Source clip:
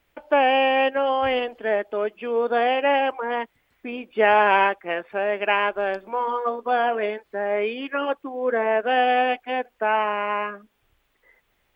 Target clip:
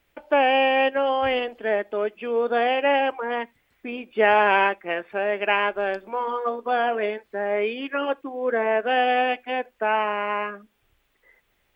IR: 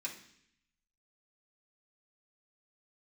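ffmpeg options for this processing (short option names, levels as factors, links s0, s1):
-filter_complex "[0:a]equalizer=f=930:w=1.5:g=-2,asplit=2[s0][s1];[1:a]atrim=start_sample=2205,atrim=end_sample=3969[s2];[s1][s2]afir=irnorm=-1:irlink=0,volume=0.126[s3];[s0][s3]amix=inputs=2:normalize=0"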